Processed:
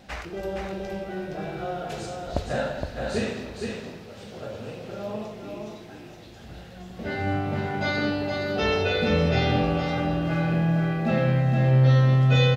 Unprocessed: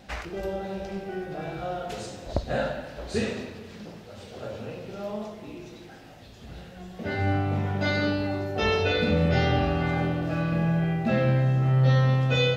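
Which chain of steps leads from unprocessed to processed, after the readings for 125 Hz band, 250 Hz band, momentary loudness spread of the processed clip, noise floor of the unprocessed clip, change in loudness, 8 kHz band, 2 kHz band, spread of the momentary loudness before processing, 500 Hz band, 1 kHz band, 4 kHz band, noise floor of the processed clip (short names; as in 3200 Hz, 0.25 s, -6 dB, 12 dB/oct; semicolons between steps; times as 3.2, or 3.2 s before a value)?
+2.0 dB, +1.5 dB, 20 LU, -46 dBFS, +1.5 dB, +1.0 dB, +1.0 dB, 20 LU, +1.0 dB, +1.0 dB, +1.0 dB, -44 dBFS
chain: notches 50/100 Hz; echo 0.467 s -4.5 dB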